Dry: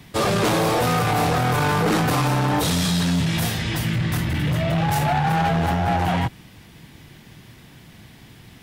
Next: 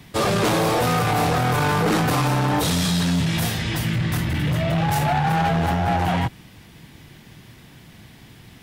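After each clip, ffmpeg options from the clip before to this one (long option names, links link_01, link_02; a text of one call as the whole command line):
ffmpeg -i in.wav -af anull out.wav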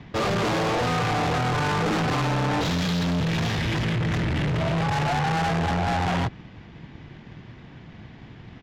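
ffmpeg -i in.wav -af "aresample=16000,asoftclip=type=hard:threshold=-28.5dB,aresample=44100,aeval=exprs='0.0708*(cos(1*acos(clip(val(0)/0.0708,-1,1)))-cos(1*PI/2))+0.00316*(cos(7*acos(clip(val(0)/0.0708,-1,1)))-cos(7*PI/2))':channel_layout=same,adynamicsmooth=sensitivity=3.5:basefreq=2600,volume=5.5dB" out.wav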